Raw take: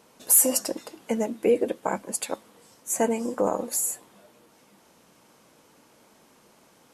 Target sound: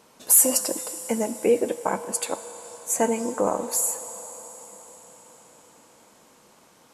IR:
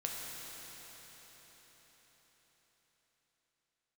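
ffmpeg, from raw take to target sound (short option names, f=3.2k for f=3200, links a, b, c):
-filter_complex "[0:a]asplit=2[a][b];[b]equalizer=f=250:t=o:w=1:g=-11,equalizer=f=500:t=o:w=1:g=4,equalizer=f=1k:t=o:w=1:g=11,equalizer=f=4k:t=o:w=1:g=5,equalizer=f=8k:t=o:w=1:g=11[c];[1:a]atrim=start_sample=2205[d];[c][d]afir=irnorm=-1:irlink=0,volume=-16.5dB[e];[a][e]amix=inputs=2:normalize=0"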